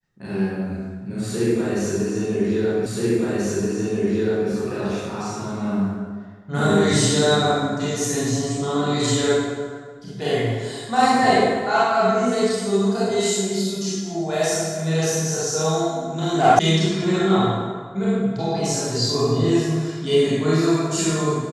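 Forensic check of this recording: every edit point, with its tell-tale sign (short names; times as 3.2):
2.86 repeat of the last 1.63 s
16.59 sound cut off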